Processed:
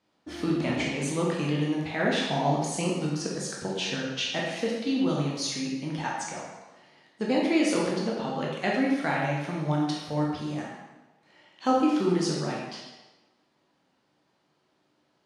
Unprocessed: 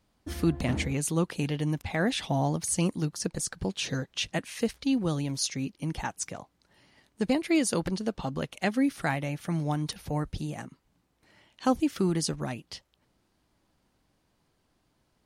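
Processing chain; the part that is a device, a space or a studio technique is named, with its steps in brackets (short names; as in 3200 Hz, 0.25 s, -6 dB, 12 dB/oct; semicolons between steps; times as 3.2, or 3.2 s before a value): supermarket ceiling speaker (BPF 200–5700 Hz; reverb RT60 1.2 s, pre-delay 13 ms, DRR -4 dB); gain -1.5 dB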